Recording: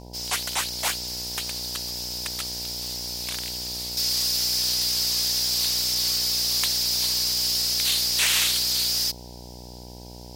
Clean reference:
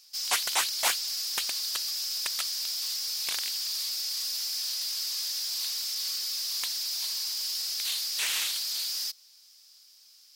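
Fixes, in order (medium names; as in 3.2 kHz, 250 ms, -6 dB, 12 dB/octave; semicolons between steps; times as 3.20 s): de-hum 60.8 Hz, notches 16; gain correction -8 dB, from 3.97 s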